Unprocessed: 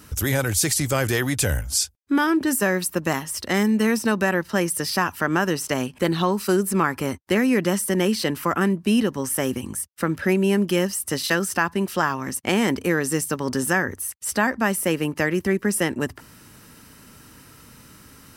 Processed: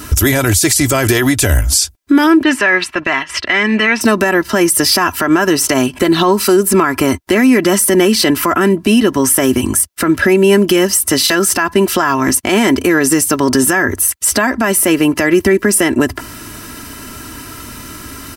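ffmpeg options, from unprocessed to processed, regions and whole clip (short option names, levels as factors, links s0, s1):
-filter_complex "[0:a]asettb=1/sr,asplit=3[s0][s1][s2];[s0]atrim=end=2.434[s3];[s1]atrim=start=2.43:end=4.01,asetpts=PTS-STARTPTS,afade=t=in:d=0.004:c=qsin,afade=t=out:st=1.576:d=0.004:c=qsin,agate=range=0.316:threshold=0.0224:ratio=16:release=100:detection=peak,lowpass=f=2500:t=q:w=1.5,tiltshelf=f=670:g=-7[s4];[s2]atrim=start=4.006[s5];[s3][s4]acrossfade=d=0.004:c1=hsin:c2=qsin[s6];[s6][s5]acrossfade=d=0.004:c1=qsin:c2=hsin,aecho=1:1:3:0.55,acompressor=threshold=0.0708:ratio=4,alimiter=level_in=7.5:limit=0.891:release=50:level=0:latency=1,volume=0.891"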